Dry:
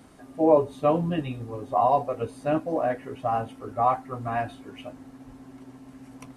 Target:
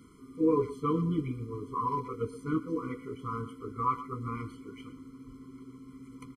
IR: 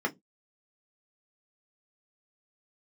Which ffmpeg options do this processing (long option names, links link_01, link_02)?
-filter_complex "[0:a]asplit=2[link_01][link_02];[link_02]adelay=120,highpass=300,lowpass=3400,asoftclip=type=hard:threshold=-14.5dB,volume=-14dB[link_03];[link_01][link_03]amix=inputs=2:normalize=0,afftfilt=real='re*eq(mod(floor(b*sr/1024/490),2),0)':imag='im*eq(mod(floor(b*sr/1024/490),2),0)':win_size=1024:overlap=0.75,volume=-2.5dB"